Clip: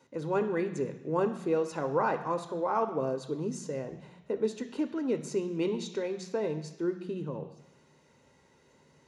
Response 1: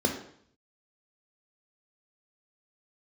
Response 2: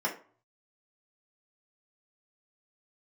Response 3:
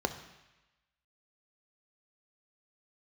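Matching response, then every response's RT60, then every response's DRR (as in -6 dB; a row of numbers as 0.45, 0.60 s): 3; 0.60, 0.45, 1.0 s; 4.0, -3.5, 7.5 dB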